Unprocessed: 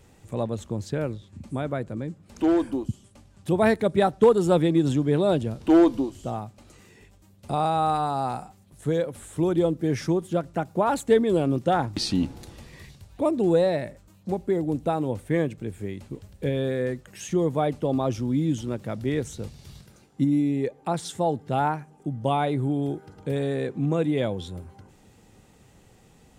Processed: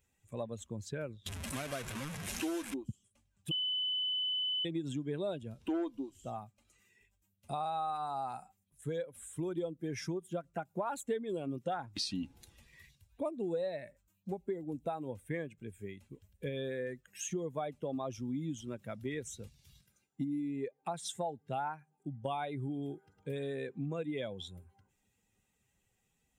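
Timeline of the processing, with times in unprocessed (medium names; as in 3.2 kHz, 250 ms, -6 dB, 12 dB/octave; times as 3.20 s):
1.26–2.74 s: one-bit delta coder 64 kbps, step -24.5 dBFS
3.51–4.65 s: bleep 3.01 kHz -23 dBFS
whole clip: expander on every frequency bin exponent 1.5; bass shelf 230 Hz -11 dB; compression 4:1, threshold -36 dBFS; trim +1 dB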